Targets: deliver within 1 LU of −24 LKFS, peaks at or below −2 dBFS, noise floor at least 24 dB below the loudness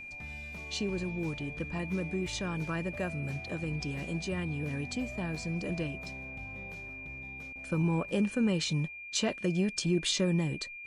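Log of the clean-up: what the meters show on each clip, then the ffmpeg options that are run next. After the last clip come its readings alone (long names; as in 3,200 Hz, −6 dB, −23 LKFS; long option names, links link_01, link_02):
interfering tone 2,400 Hz; level of the tone −42 dBFS; integrated loudness −33.5 LKFS; sample peak −17.0 dBFS; target loudness −24.0 LKFS
→ -af "bandreject=frequency=2400:width=30"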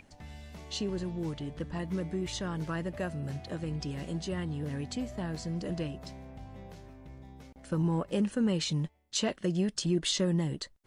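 interfering tone none found; integrated loudness −33.0 LKFS; sample peak −17.5 dBFS; target loudness −24.0 LKFS
→ -af "volume=9dB"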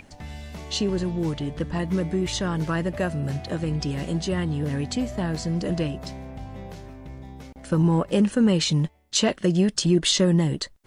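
integrated loudness −24.0 LKFS; sample peak −8.5 dBFS; background noise floor −50 dBFS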